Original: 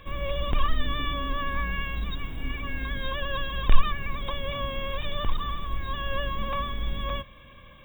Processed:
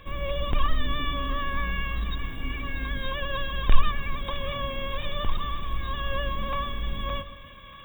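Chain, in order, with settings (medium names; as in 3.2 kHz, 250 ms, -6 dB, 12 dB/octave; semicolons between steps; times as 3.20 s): two-band feedback delay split 990 Hz, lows 126 ms, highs 636 ms, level -13 dB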